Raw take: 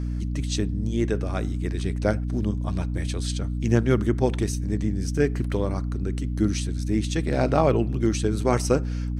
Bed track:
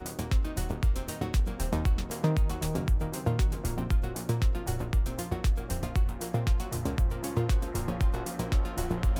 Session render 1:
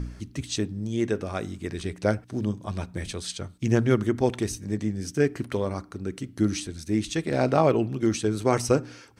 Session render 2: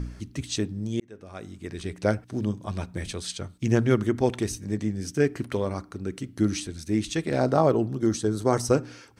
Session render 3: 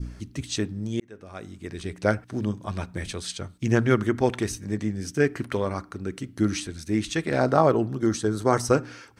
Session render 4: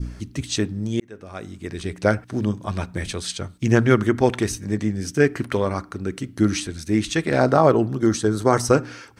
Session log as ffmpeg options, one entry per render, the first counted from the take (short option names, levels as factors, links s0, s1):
-af "bandreject=f=60:t=h:w=4,bandreject=f=120:t=h:w=4,bandreject=f=180:t=h:w=4,bandreject=f=240:t=h:w=4,bandreject=f=300:t=h:w=4"
-filter_complex "[0:a]asettb=1/sr,asplit=3[s0][s1][s2];[s0]atrim=end=7.394[s3];[s1]atrim=start=7.39:end=8.72,asetpts=PTS-STARTPTS,afade=t=in:d=0.004:c=qsin,afade=t=out:st=1.326:d=0.004:c=qsin,equalizer=f=2500:t=o:w=0.56:g=-13[s4];[s2]atrim=start=8.716[s5];[s3][s4]acrossfade=d=0.004:c1=hsin:c2=qsin[s6];[s6][s5]acrossfade=d=0.004:c1=qsin:c2=hsin,asplit=2[s7][s8];[s7]atrim=end=1,asetpts=PTS-STARTPTS,afade=t=out:st=0.996:d=0.004:c=hsin[s9];[s8]atrim=start=1,asetpts=PTS-STARTPTS,afade=t=in:d=1.05[s10];[s9][s10]concat=n=2:v=0:a=1"
-af "adynamicequalizer=threshold=0.00891:dfrequency=1500:dqfactor=0.9:tfrequency=1500:tqfactor=0.9:attack=5:release=100:ratio=0.375:range=3:mode=boostabove:tftype=bell"
-af "volume=1.68,alimiter=limit=0.708:level=0:latency=1"